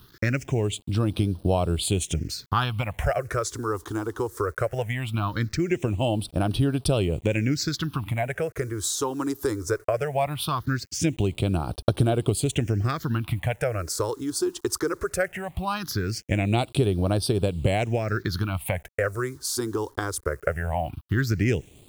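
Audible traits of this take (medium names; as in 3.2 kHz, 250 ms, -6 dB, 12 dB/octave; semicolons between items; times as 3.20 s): a quantiser's noise floor 8-bit, dither none; phasing stages 6, 0.19 Hz, lowest notch 160–2000 Hz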